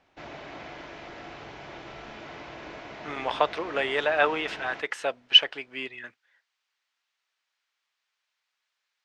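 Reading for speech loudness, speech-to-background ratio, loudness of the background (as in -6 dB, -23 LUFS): -24.5 LUFS, 17.5 dB, -42.0 LUFS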